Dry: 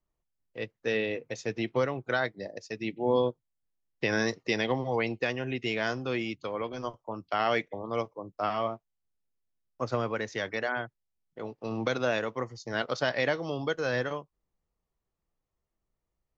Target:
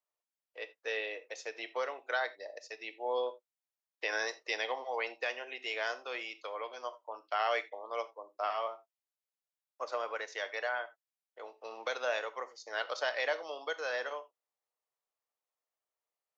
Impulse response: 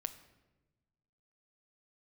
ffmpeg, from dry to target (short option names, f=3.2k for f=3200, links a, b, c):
-filter_complex "[0:a]highpass=f=520:w=0.5412,highpass=f=520:w=1.3066[a];[1:a]atrim=start_sample=2205,afade=t=out:st=0.14:d=0.01,atrim=end_sample=6615[b];[a][b]afir=irnorm=-1:irlink=0,volume=-2dB"